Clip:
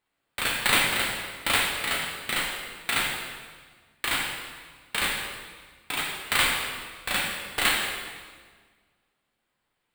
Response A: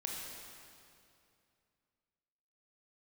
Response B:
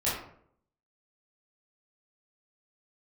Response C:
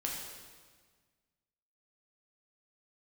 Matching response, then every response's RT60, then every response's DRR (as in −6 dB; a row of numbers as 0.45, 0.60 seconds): C; 2.5, 0.65, 1.6 seconds; −2.0, −10.0, −2.5 decibels